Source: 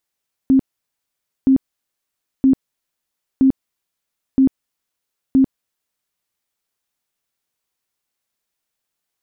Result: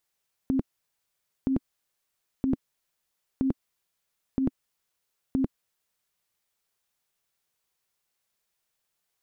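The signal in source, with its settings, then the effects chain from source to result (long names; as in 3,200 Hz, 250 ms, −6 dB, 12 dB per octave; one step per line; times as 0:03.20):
tone bursts 266 Hz, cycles 25, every 0.97 s, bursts 6, −8.5 dBFS
parametric band 270 Hz −14 dB 0.2 octaves
brickwall limiter −14.5 dBFS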